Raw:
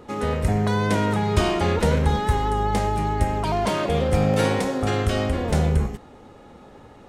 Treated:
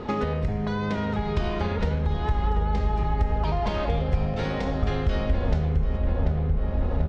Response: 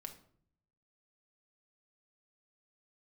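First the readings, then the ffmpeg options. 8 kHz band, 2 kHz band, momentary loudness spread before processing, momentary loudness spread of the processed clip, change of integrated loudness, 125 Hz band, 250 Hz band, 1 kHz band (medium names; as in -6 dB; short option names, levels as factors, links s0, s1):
under -15 dB, -6.0 dB, 3 LU, 2 LU, -4.0 dB, -2.0 dB, -4.5 dB, -6.0 dB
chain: -filter_complex "[0:a]lowshelf=f=110:g=6.5,asplit=2[s0][s1];[s1]adelay=739,lowpass=f=1900:p=1,volume=0.398,asplit=2[s2][s3];[s3]adelay=739,lowpass=f=1900:p=1,volume=0.51,asplit=2[s4][s5];[s5]adelay=739,lowpass=f=1900:p=1,volume=0.51,asplit=2[s6][s7];[s7]adelay=739,lowpass=f=1900:p=1,volume=0.51,asplit=2[s8][s9];[s9]adelay=739,lowpass=f=1900:p=1,volume=0.51,asplit=2[s10][s11];[s11]adelay=739,lowpass=f=1900:p=1,volume=0.51[s12];[s0][s2][s4][s6][s8][s10][s12]amix=inputs=7:normalize=0,asplit=2[s13][s14];[1:a]atrim=start_sample=2205[s15];[s14][s15]afir=irnorm=-1:irlink=0,volume=2.24[s16];[s13][s16]amix=inputs=2:normalize=0,acompressor=threshold=0.0562:ratio=10,asubboost=boost=3:cutoff=83,lowpass=f=5100:w=0.5412,lowpass=f=5100:w=1.3066,volume=1.19"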